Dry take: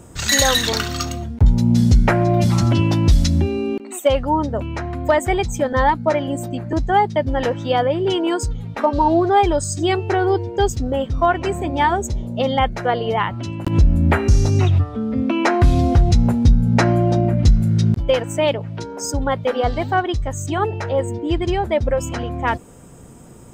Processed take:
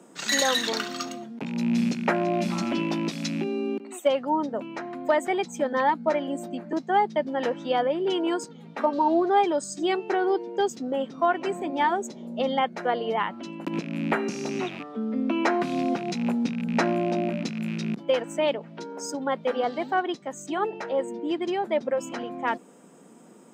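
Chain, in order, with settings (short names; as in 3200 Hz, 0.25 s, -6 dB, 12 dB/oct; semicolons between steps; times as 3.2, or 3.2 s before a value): rattling part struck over -14 dBFS, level -21 dBFS; steep high-pass 180 Hz 48 dB/oct; high shelf 8500 Hz -9.5 dB; gain -6 dB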